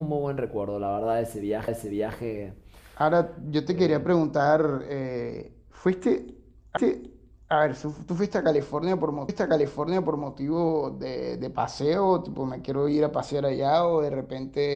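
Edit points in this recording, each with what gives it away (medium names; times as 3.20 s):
1.68 s: repeat of the last 0.49 s
6.77 s: repeat of the last 0.76 s
9.29 s: repeat of the last 1.05 s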